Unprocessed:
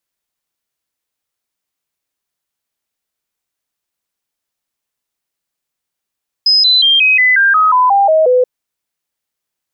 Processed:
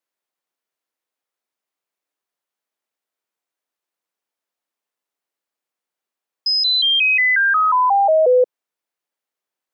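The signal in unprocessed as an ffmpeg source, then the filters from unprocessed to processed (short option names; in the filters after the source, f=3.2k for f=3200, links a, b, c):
-f lavfi -i "aevalsrc='0.473*clip(min(mod(t,0.18),0.18-mod(t,0.18))/0.005,0,1)*sin(2*PI*5060*pow(2,-floor(t/0.18)/3)*mod(t,0.18))':d=1.98:s=44100"
-filter_complex "[0:a]highpass=320,highshelf=f=2.3k:g=-9.5,acrossover=split=420|3000[a][b][c];[b]acompressor=threshold=-17dB:ratio=2[d];[a][d][c]amix=inputs=3:normalize=0"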